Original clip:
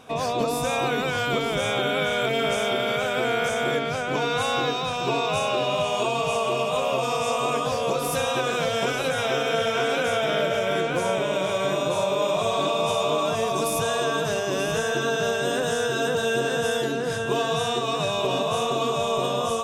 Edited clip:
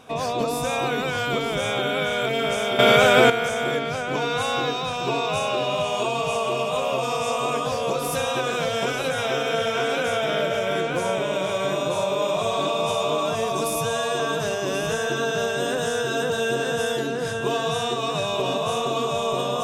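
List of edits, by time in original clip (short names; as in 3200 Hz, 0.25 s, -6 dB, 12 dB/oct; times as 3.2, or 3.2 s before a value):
2.79–3.3 gain +10 dB
13.75–14.05 stretch 1.5×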